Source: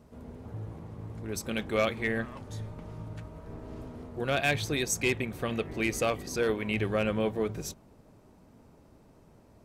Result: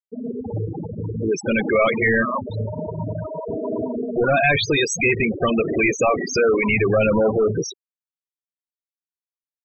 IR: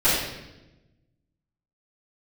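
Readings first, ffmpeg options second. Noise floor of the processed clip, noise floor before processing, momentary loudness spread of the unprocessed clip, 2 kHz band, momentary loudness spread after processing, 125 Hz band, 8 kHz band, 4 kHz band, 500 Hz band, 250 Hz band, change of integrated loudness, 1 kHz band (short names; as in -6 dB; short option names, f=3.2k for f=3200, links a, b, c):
under -85 dBFS, -58 dBFS, 15 LU, +12.0 dB, 11 LU, +9.0 dB, +6.0 dB, +8.0 dB, +12.0 dB, +11.0 dB, +10.5 dB, +12.0 dB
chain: -filter_complex "[0:a]asplit=2[a][b];[b]highpass=f=720:p=1,volume=30dB,asoftclip=type=tanh:threshold=-16.5dB[c];[a][c]amix=inputs=2:normalize=0,lowpass=f=5.4k:p=1,volume=-6dB,afftfilt=real='re*gte(hypot(re,im),0.141)':imag='im*gte(hypot(re,im),0.141)':win_size=1024:overlap=0.75,volume=6.5dB"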